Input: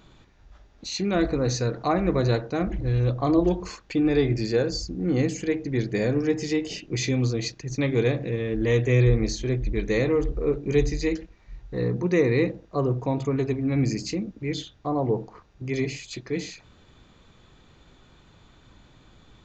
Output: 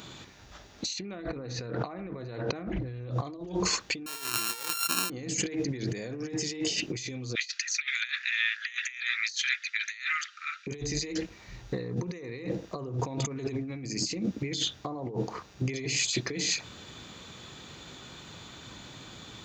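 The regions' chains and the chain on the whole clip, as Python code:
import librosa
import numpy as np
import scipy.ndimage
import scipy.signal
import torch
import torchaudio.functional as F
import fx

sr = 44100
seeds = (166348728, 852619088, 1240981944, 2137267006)

y = fx.chain(x, sr, fx.lowpass(hz=2700.0, slope=12),
    fx.env_flatten(amount_pct=50), at=(0.99, 3.11))
y = fx.chain(y, sr, fx.sample_sort(block=32),
    fx.highpass(hz=1200.0, slope=6), at=(4.06, 5.1))
y = fx.chain(y, sr, fx.steep_highpass(hz=1300.0, slope=96),
    fx.over_compress(threshold_db=-41.0, ratio=-0.5),
    fx.air_absorb(metres=110.0), at=(7.35, 10.67))
y = scipy.signal.sosfilt(scipy.signal.butter(2, 100.0, 'highpass', fs=sr, output='sos'), y)
y = fx.high_shelf(y, sr, hz=3000.0, db=11.0)
y = fx.over_compress(y, sr, threshold_db=-34.0, ratio=-1.0)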